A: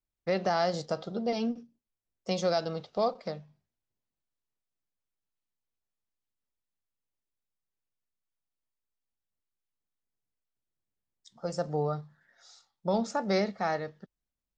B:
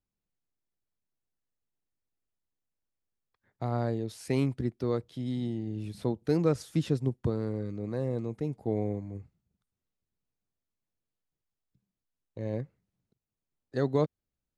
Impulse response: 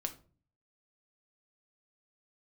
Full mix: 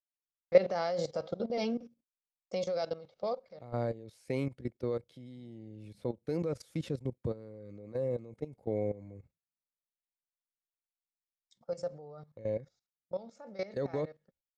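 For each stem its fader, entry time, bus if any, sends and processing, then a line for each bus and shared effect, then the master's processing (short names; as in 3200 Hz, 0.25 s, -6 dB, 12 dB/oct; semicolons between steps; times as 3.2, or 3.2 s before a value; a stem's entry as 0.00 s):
+1.0 dB, 0.25 s, no send, auto duck -13 dB, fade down 1.20 s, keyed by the second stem
-4.0 dB, 0.00 s, no send, dry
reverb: off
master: small resonant body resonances 530/2200 Hz, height 11 dB, ringing for 35 ms; gate with hold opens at -46 dBFS; level quantiser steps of 16 dB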